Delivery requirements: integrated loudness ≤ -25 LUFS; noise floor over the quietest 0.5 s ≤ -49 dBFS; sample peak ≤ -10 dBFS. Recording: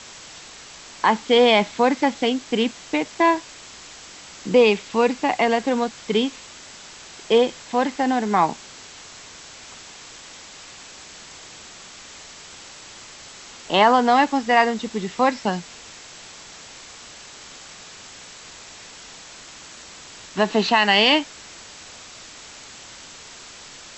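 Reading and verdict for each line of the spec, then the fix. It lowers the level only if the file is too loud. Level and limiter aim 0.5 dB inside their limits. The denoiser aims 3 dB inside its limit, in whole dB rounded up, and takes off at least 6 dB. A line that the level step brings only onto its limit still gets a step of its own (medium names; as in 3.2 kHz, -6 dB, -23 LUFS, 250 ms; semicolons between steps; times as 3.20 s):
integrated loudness -20.0 LUFS: fail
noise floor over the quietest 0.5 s -42 dBFS: fail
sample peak -4.5 dBFS: fail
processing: noise reduction 6 dB, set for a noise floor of -42 dBFS; trim -5.5 dB; peak limiter -10.5 dBFS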